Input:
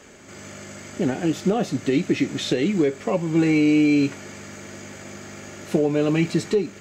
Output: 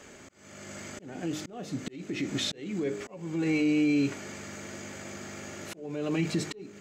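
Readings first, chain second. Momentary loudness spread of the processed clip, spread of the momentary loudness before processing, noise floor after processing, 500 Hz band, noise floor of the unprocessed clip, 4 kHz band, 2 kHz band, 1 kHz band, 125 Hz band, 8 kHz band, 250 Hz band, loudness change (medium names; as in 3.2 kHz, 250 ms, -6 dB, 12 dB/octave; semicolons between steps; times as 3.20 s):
16 LU, 20 LU, -51 dBFS, -12.5 dB, -43 dBFS, -4.5 dB, -7.0 dB, -11.5 dB, -10.0 dB, -4.5 dB, -9.5 dB, -10.5 dB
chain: de-hum 51.11 Hz, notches 10; peak limiter -16.5 dBFS, peak gain reduction 7.5 dB; slow attack 489 ms; trim -2.5 dB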